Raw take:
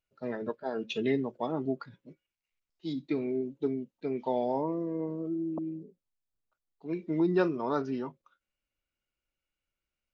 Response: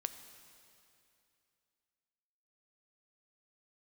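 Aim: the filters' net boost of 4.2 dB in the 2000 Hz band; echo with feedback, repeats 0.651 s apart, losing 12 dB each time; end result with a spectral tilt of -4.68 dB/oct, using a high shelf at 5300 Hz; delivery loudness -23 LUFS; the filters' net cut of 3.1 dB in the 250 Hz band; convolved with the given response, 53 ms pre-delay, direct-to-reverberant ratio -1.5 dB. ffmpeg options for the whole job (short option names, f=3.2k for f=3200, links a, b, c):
-filter_complex "[0:a]equalizer=f=250:t=o:g=-4.5,equalizer=f=2k:t=o:g=4.5,highshelf=f=5.3k:g=7.5,aecho=1:1:651|1302|1953:0.251|0.0628|0.0157,asplit=2[a][b];[1:a]atrim=start_sample=2205,adelay=53[c];[b][c]afir=irnorm=-1:irlink=0,volume=2.5dB[d];[a][d]amix=inputs=2:normalize=0,volume=7.5dB"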